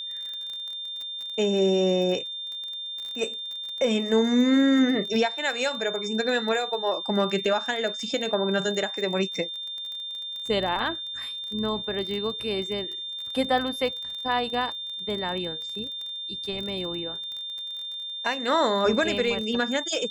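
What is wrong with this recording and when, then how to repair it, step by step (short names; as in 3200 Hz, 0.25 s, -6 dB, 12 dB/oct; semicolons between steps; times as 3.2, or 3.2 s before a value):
crackle 26/s -32 dBFS
tone 3600 Hz -32 dBFS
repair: de-click; notch 3600 Hz, Q 30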